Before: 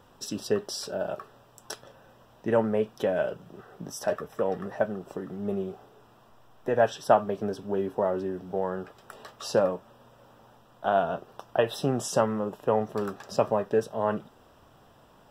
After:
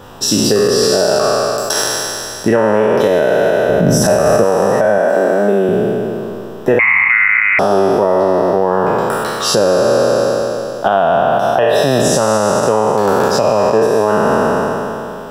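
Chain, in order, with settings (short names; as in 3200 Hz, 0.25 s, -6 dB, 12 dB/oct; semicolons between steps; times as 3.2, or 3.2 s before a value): spectral trails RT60 2.82 s; compressor 20:1, threshold -25 dBFS, peak gain reduction 15.5 dB; 3.69–4.44 low shelf 300 Hz +11.5 dB; 4.98–5.69 HPF 200 Hz 24 dB/oct; 6.79–7.59 inverted band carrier 2700 Hz; maximiser +19 dB; gain -1 dB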